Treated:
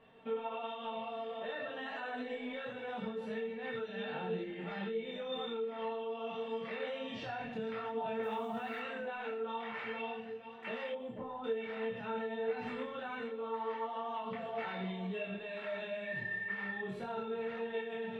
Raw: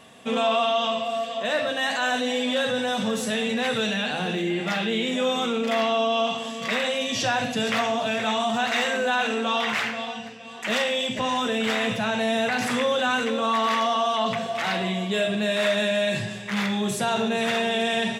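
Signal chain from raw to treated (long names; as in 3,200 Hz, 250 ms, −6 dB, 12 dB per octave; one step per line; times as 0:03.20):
0:16.02–0:16.77: steady tone 1,800 Hz −36 dBFS
high-frequency loss of the air 480 metres
brickwall limiter −22.5 dBFS, peak gain reduction 7 dB
tuned comb filter 450 Hz, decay 0.4 s, mix 90%
downward compressor 6 to 1, threshold −43 dBFS, peak gain reduction 9.5 dB
0:08.23–0:08.80: log-companded quantiser 8 bits
0:10.92–0:11.44: flat-topped bell 3,600 Hz −16 dB 2.6 octaves
multi-voice chorus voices 6, 1 Hz, delay 24 ms, depth 3 ms
level +10.5 dB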